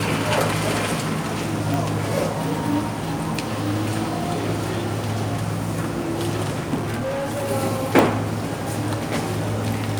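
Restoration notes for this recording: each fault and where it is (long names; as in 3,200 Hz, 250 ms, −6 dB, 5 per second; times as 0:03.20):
0:01.74: click
0:06.74–0:07.51: clipping −22 dBFS
0:07.99: click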